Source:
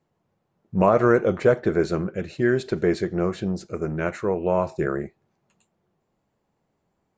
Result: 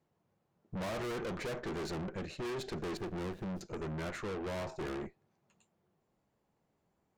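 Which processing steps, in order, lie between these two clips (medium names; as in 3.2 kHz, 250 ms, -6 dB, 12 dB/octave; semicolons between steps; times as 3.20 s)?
2.97–3.61 s: median filter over 41 samples; valve stage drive 35 dB, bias 0.65; trim -1.5 dB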